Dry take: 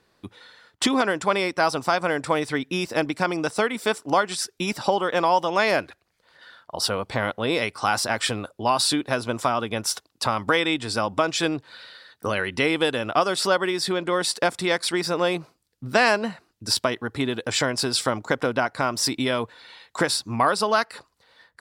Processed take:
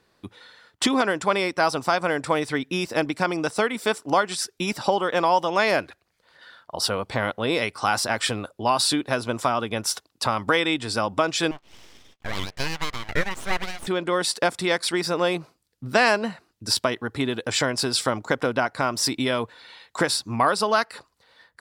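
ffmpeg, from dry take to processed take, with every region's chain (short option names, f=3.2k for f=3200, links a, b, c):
-filter_complex "[0:a]asettb=1/sr,asplit=3[a][b][c];[a]atrim=end=11.514[d];[b]atrim=start=11.51:end=13.87,asetpts=PTS-STARTPTS,afade=t=in:d=0.004:c=qsin,afade=t=out:st=2.356:d=0.004:c=qsin,highpass=590,lowpass=2.8k,aeval=exprs='abs(val(0))':c=same[e];[c]atrim=start=13.866[f];[d][e]acrossfade=d=0.004:c1=hsin:c2=qsin[g];[g][f]acrossfade=d=0.004:c1=qsin:c2=hsin"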